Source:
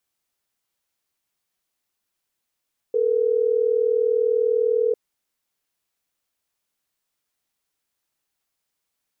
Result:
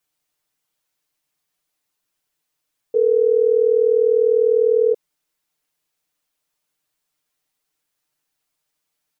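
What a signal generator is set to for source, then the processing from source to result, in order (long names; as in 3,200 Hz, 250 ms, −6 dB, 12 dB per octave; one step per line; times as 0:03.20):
call progress tone ringback tone, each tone −20 dBFS
comb filter 6.6 ms, depth 85%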